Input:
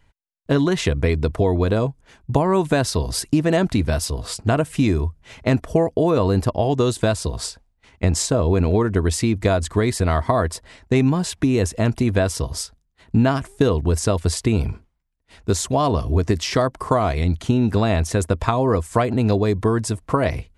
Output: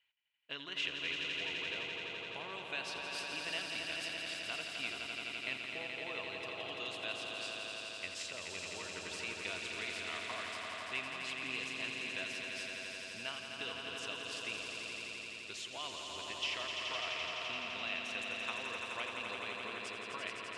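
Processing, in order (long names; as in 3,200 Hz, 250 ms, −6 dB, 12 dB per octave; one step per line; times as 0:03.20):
resonant band-pass 2,800 Hz, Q 4.5
on a send: echo that builds up and dies away 85 ms, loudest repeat 5, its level −6 dB
on the sum: level −4 dB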